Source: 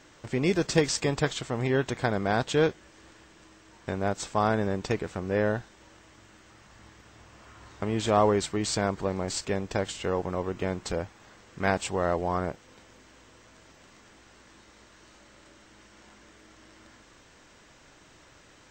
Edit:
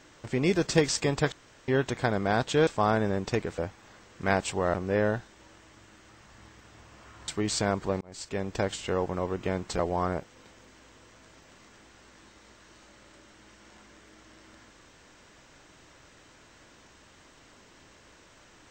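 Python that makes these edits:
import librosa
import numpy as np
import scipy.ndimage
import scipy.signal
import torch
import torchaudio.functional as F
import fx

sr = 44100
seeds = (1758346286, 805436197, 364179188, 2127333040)

y = fx.edit(x, sr, fx.room_tone_fill(start_s=1.32, length_s=0.36),
    fx.cut(start_s=2.67, length_s=1.57),
    fx.cut(start_s=7.69, length_s=0.75),
    fx.fade_in_span(start_s=9.17, length_s=0.51),
    fx.move(start_s=10.95, length_s=1.16, to_s=5.15), tone=tone)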